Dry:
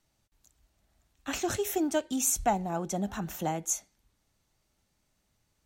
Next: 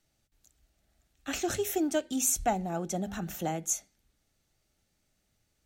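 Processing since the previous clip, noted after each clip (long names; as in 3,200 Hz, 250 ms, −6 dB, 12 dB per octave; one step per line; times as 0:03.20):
parametric band 1,000 Hz −10 dB 0.32 octaves
mains-hum notches 50/100/150/200/250 Hz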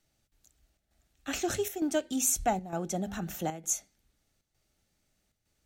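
square-wave tremolo 1.1 Hz, depth 60%, duty 85%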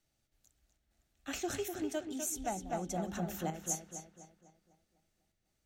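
feedback echo with a low-pass in the loop 250 ms, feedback 46%, low-pass 4,100 Hz, level −5 dB
speech leveller 0.5 s
level −7 dB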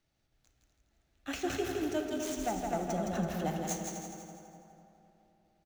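running median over 5 samples
on a send: repeating echo 165 ms, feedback 45%, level −5 dB
on the sum: dense smooth reverb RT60 3.2 s, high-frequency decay 0.4×, pre-delay 0 ms, DRR 7.5 dB
level +2.5 dB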